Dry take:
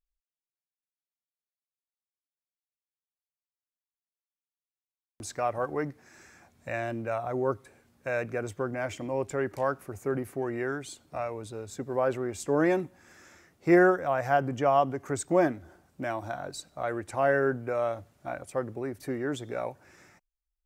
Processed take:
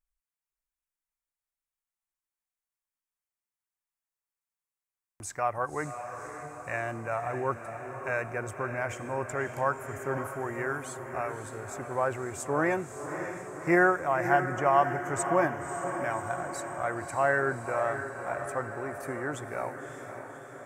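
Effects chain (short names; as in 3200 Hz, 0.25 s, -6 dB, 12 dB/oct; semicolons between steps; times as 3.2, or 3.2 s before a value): graphic EQ 250/500/1000/2000/4000/8000 Hz -6/-4/+4/+4/-11/+4 dB; on a send: diffused feedback echo 0.57 s, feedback 64%, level -8.5 dB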